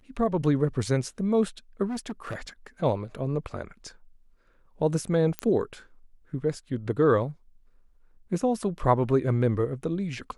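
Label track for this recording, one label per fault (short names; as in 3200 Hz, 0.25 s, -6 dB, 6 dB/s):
1.860000	2.480000	clipped -28.5 dBFS
5.390000	5.390000	pop -14 dBFS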